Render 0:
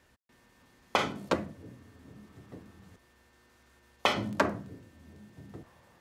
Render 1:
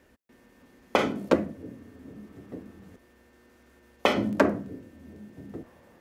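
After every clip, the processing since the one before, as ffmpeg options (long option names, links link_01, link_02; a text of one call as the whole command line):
ffmpeg -i in.wav -af "equalizer=frequency=125:width_type=o:width=1:gain=-5,equalizer=frequency=250:width_type=o:width=1:gain=6,equalizer=frequency=500:width_type=o:width=1:gain=4,equalizer=frequency=1000:width_type=o:width=1:gain=-4,equalizer=frequency=4000:width_type=o:width=1:gain=-5,equalizer=frequency=8000:width_type=o:width=1:gain=-4,volume=4dB" out.wav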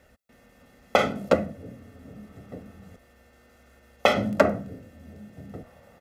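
ffmpeg -i in.wav -af "aecho=1:1:1.5:0.62,volume=1.5dB" out.wav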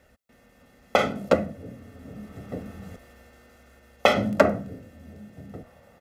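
ffmpeg -i in.wav -af "dynaudnorm=framelen=260:gausssize=9:maxgain=14dB,volume=-1dB" out.wav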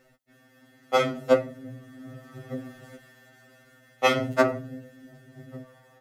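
ffmpeg -i in.wav -af "afftfilt=real='re*2.45*eq(mod(b,6),0)':imag='im*2.45*eq(mod(b,6),0)':win_size=2048:overlap=0.75,volume=1.5dB" out.wav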